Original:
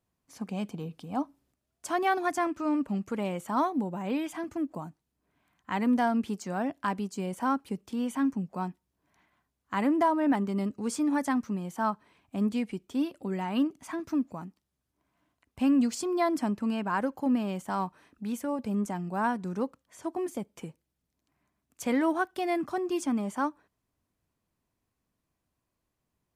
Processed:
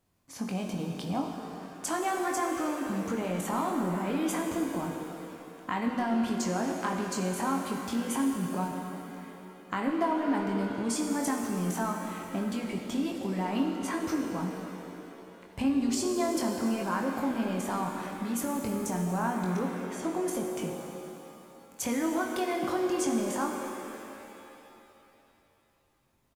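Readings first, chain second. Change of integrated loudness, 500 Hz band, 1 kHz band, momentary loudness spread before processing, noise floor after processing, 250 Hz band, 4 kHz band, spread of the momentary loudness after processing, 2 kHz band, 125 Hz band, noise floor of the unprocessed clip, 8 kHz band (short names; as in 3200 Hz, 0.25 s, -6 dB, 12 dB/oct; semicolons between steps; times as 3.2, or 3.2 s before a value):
-1.0 dB, +0.5 dB, -1.0 dB, 11 LU, -64 dBFS, -1.0 dB, +4.0 dB, 14 LU, -0.5 dB, +2.5 dB, -83 dBFS, +7.5 dB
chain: in parallel at +0.5 dB: level quantiser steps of 23 dB; on the sum: transient shaper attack +2 dB, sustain +7 dB; compressor 3:1, threshold -35 dBFS, peak gain reduction 15 dB; doubler 22 ms -5.5 dB; shimmer reverb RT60 2.9 s, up +7 st, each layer -8 dB, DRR 3 dB; gain +2.5 dB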